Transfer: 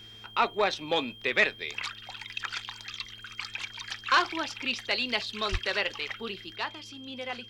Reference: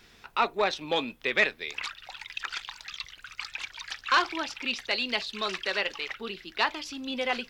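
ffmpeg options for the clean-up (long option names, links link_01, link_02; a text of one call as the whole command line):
ffmpeg -i in.wav -filter_complex "[0:a]bandreject=frequency=109.7:width_type=h:width=4,bandreject=frequency=219.4:width_type=h:width=4,bandreject=frequency=329.1:width_type=h:width=4,bandreject=frequency=438.8:width_type=h:width=4,bandreject=frequency=3200:width=30,asplit=3[link_01][link_02][link_03];[link_01]afade=type=out:start_time=5.51:duration=0.02[link_04];[link_02]highpass=frequency=140:width=0.5412,highpass=frequency=140:width=1.3066,afade=type=in:start_time=5.51:duration=0.02,afade=type=out:start_time=5.63:duration=0.02[link_05];[link_03]afade=type=in:start_time=5.63:duration=0.02[link_06];[link_04][link_05][link_06]amix=inputs=3:normalize=0,asetnsamples=nb_out_samples=441:pad=0,asendcmd='6.56 volume volume 7.5dB',volume=0dB" out.wav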